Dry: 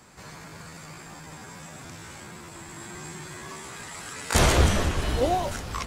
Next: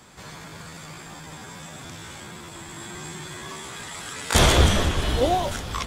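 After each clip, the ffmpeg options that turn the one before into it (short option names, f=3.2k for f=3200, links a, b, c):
-af "equalizer=f=3.4k:w=6.8:g=8.5,volume=2.5dB"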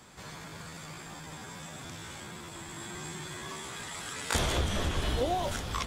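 -af "acompressor=threshold=-21dB:ratio=12,volume=-4dB"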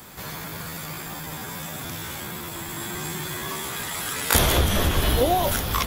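-af "aexciter=amount=4:drive=9.5:freq=11k,volume=9dB"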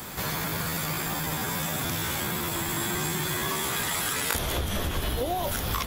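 -af "acompressor=threshold=-30dB:ratio=16,volume=5.5dB"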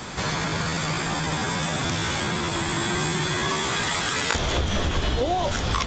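-af "aresample=16000,aresample=44100,volume=5dB"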